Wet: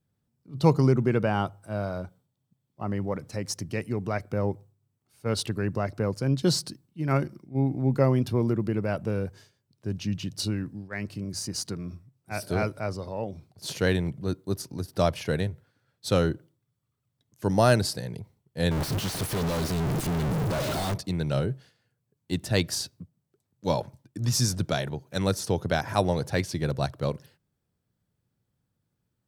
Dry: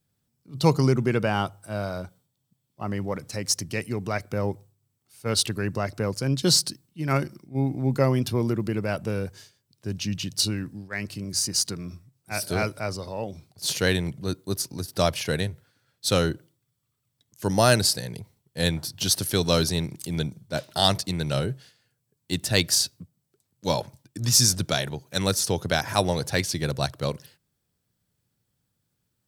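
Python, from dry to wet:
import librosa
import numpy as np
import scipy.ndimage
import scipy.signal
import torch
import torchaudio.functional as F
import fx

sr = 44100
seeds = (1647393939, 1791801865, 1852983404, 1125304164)

y = fx.clip_1bit(x, sr, at=(18.71, 20.94))
y = fx.high_shelf(y, sr, hz=2200.0, db=-10.5)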